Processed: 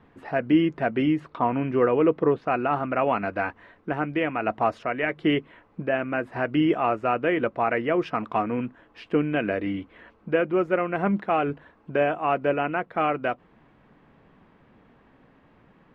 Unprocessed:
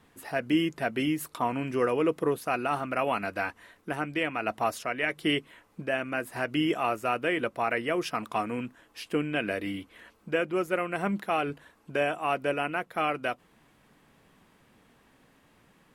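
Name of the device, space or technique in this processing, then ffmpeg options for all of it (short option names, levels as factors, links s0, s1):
phone in a pocket: -filter_complex "[0:a]asettb=1/sr,asplit=3[s0][s1][s2];[s0]atrim=end=1.204[s3];[s1]atrim=start=1.2:end=2.76,asetpts=PTS-STARTPTS,afade=t=in:d=0.004:c=qsin,afade=t=out:st=1.556:d=0.004:c=qsin,lowpass=5200[s4];[s2]atrim=start=2.756[s5];[s3][s4]acrossfade=d=0.004:c1=hsin:c2=qsin[s6];[s6][s5]acrossfade=d=0.004:c1=qsin:c2=hsin,lowpass=3200,highshelf=f=2300:g=-10.5,volume=2"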